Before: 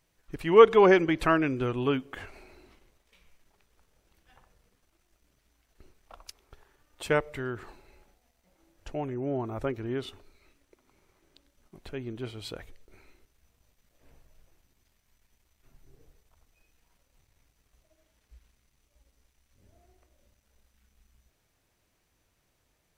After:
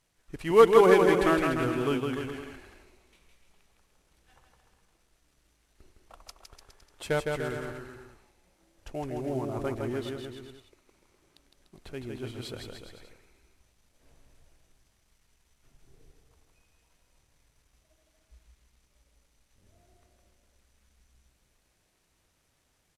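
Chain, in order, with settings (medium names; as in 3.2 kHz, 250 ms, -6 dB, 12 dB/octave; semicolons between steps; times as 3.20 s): CVSD coder 64 kbps; on a send: bouncing-ball echo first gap 160 ms, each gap 0.85×, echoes 5; on the sum: trim -2 dB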